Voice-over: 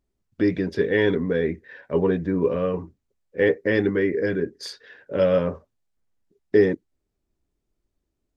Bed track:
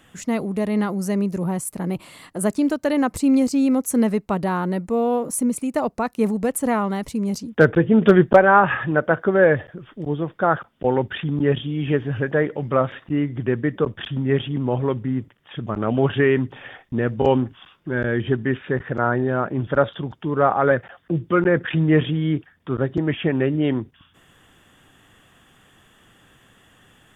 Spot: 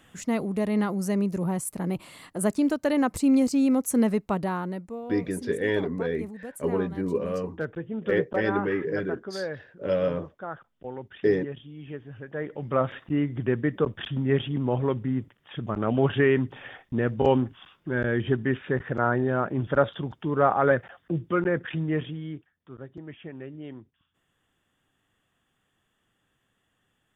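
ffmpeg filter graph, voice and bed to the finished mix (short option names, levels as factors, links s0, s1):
-filter_complex "[0:a]adelay=4700,volume=0.531[s0];[1:a]volume=3.35,afade=t=out:st=4.27:d=0.75:silence=0.199526,afade=t=in:st=12.28:d=0.63:silence=0.199526,afade=t=out:st=20.71:d=1.85:silence=0.158489[s1];[s0][s1]amix=inputs=2:normalize=0"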